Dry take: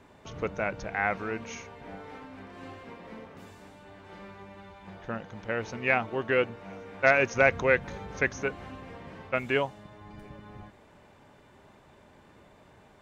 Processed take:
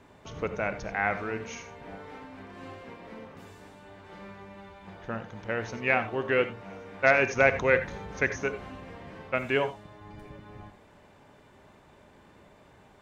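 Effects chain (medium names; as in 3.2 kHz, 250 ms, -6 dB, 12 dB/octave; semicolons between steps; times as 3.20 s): gated-style reverb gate 110 ms rising, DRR 10.5 dB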